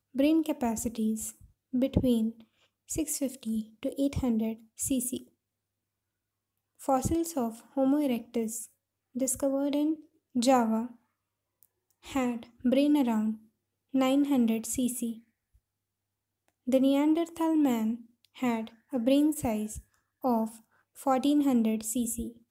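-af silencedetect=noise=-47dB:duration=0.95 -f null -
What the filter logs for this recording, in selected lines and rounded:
silence_start: 5.23
silence_end: 6.80 | silence_duration: 1.57
silence_start: 15.19
silence_end: 16.48 | silence_duration: 1.29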